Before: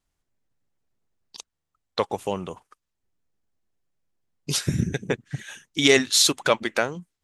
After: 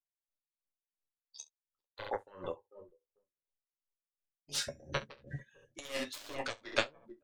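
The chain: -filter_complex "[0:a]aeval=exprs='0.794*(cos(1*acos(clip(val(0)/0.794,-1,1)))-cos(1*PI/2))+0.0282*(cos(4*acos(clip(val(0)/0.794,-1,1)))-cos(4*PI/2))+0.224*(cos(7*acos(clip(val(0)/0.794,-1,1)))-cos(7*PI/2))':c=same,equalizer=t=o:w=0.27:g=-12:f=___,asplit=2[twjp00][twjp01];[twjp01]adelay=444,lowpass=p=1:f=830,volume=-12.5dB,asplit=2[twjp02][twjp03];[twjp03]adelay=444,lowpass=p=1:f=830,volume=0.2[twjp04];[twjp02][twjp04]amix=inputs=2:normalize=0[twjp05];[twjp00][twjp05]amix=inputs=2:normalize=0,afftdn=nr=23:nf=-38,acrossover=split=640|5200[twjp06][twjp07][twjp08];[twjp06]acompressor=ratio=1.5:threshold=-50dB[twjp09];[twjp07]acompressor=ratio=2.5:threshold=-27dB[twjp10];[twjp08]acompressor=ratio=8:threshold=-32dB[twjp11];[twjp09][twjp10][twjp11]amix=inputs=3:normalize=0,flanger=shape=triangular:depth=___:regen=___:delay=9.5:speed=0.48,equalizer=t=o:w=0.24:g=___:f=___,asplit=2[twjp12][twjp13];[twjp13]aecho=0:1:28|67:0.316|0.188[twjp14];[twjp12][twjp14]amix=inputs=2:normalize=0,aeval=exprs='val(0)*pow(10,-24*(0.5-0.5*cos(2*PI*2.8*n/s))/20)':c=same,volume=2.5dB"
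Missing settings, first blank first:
180, 5.2, -21, 11.5, 560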